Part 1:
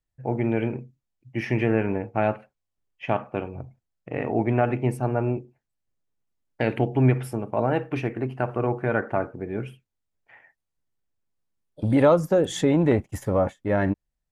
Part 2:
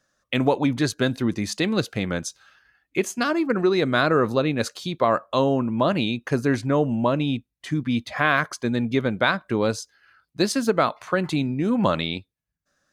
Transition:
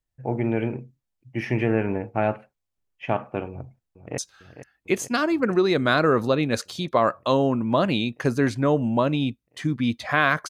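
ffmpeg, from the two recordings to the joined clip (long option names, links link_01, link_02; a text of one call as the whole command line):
ffmpeg -i cue0.wav -i cue1.wav -filter_complex "[0:a]apad=whole_dur=10.49,atrim=end=10.49,atrim=end=4.182[link_01];[1:a]atrim=start=2.248:end=8.56[link_02];[link_01][link_02]acrossfade=duration=0.004:curve1=hsin:curve2=hsin,asplit=2[link_03][link_04];[link_04]afade=type=in:start_time=3.5:duration=0.01,afade=type=out:start_time=4.18:duration=0.01,aecho=0:1:450|900|1350|1800|2250|2700|3150|3600|4050|4500|4950|5400:0.251189|0.200951|0.160761|0.128609|0.102887|0.0823095|0.0658476|0.0526781|0.0421425|0.033714|0.0269712|0.0215769[link_05];[link_03][link_05]amix=inputs=2:normalize=0" out.wav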